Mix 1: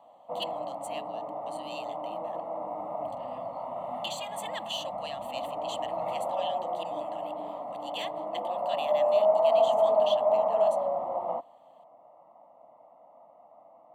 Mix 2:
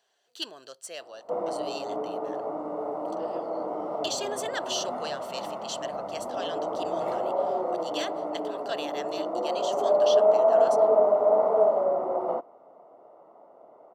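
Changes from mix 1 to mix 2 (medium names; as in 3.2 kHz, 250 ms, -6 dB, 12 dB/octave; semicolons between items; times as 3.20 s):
background: entry +1.00 s; master: remove static phaser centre 1.5 kHz, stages 6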